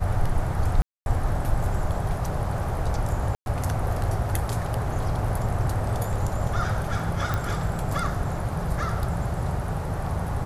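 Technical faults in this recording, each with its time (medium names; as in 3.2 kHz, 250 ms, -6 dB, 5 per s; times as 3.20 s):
0.82–1.06 s: dropout 241 ms
3.35–3.46 s: dropout 111 ms
7.34 s: pop -13 dBFS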